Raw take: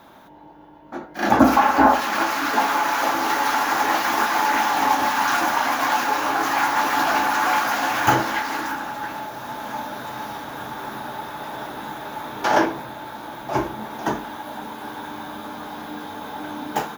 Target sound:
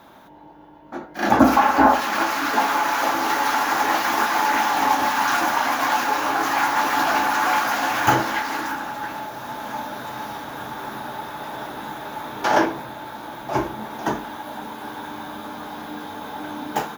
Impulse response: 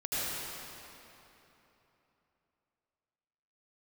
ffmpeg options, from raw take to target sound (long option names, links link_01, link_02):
-ar 48000 -c:a libopus -b:a 256k